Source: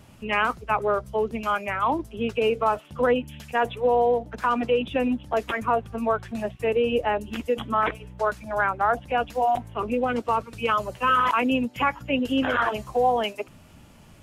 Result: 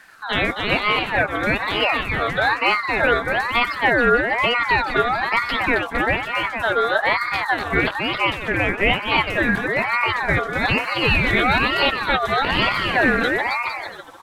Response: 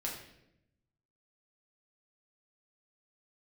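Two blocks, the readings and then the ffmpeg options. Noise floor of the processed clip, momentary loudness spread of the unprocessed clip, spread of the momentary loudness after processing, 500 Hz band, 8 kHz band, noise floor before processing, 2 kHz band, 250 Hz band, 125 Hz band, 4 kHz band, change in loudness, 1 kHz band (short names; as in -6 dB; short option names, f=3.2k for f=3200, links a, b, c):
-31 dBFS, 6 LU, 4 LU, +1.0 dB, n/a, -50 dBFS, +12.0 dB, +2.0 dB, +9.5 dB, +12.0 dB, +5.5 dB, +3.0 dB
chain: -af "aecho=1:1:270|459|591.3|683.9|748.7:0.631|0.398|0.251|0.158|0.1,aeval=exprs='val(0)*sin(2*PI*1300*n/s+1300*0.3/1.1*sin(2*PI*1.1*n/s))':c=same,volume=5.5dB"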